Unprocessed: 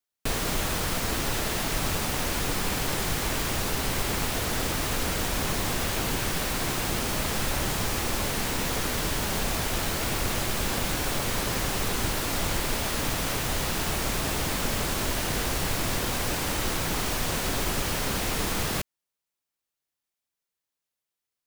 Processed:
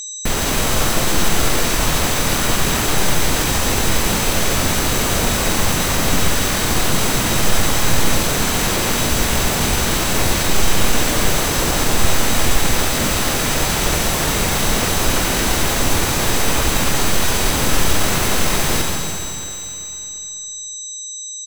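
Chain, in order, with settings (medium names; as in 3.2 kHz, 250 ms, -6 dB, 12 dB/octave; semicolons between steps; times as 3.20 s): Schroeder reverb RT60 2.9 s, combs from 26 ms, DRR -1 dB; whistle 7.7 kHz -34 dBFS; harmony voices -12 st -5 dB, -4 st -1 dB; trim +3.5 dB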